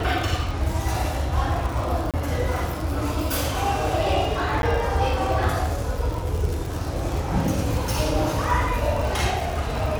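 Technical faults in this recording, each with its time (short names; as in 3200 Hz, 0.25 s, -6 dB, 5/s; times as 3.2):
crackle 90/s -27 dBFS
2.11–2.14 gap 27 ms
4.62–4.63 gap 11 ms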